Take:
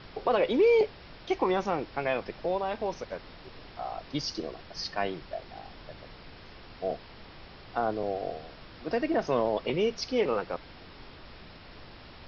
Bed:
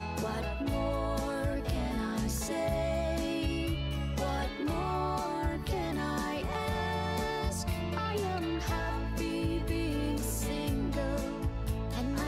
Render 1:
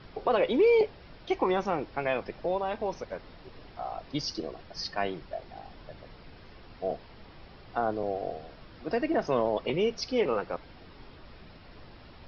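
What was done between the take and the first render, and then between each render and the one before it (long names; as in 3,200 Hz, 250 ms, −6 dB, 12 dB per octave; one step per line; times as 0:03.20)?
broadband denoise 6 dB, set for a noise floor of −49 dBFS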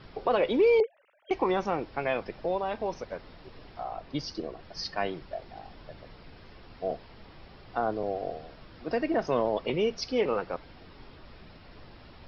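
0:00.80–0:01.31: three sine waves on the formant tracks
0:03.83–0:04.63: high-shelf EQ 5,900 Hz −12 dB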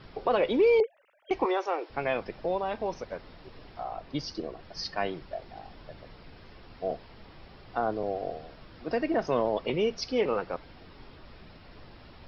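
0:01.45–0:01.90: Butterworth high-pass 340 Hz 48 dB per octave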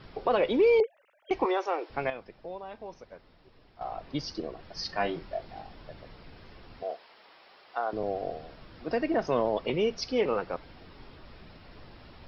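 0:02.10–0:03.81: clip gain −10.5 dB
0:04.87–0:05.63: double-tracking delay 24 ms −5 dB
0:06.83–0:07.93: high-pass filter 630 Hz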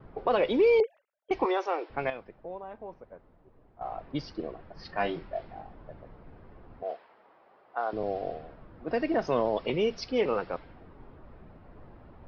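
low-pass that shuts in the quiet parts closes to 960 Hz, open at −22.5 dBFS
noise gate with hold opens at −53 dBFS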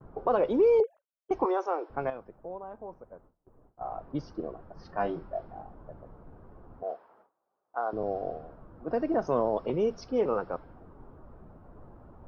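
noise gate with hold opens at −49 dBFS
flat-topped bell 3,000 Hz −13.5 dB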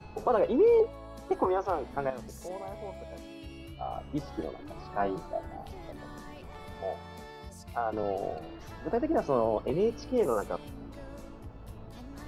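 mix in bed −13 dB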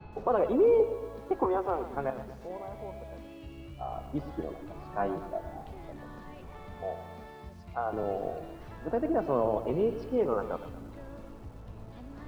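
high-frequency loss of the air 290 metres
feedback echo at a low word length 117 ms, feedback 55%, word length 9 bits, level −12 dB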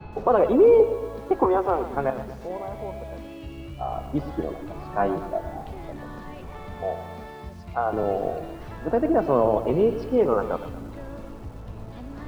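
level +7.5 dB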